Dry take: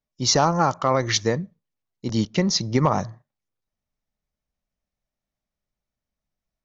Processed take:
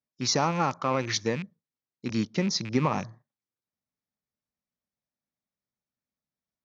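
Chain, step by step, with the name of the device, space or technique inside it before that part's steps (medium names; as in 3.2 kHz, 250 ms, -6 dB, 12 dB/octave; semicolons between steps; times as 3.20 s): car door speaker with a rattle (rattle on loud lows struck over -28 dBFS, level -21 dBFS; cabinet simulation 110–6700 Hz, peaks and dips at 250 Hz +3 dB, 660 Hz -4 dB, 2.9 kHz -6 dB); trim -5.5 dB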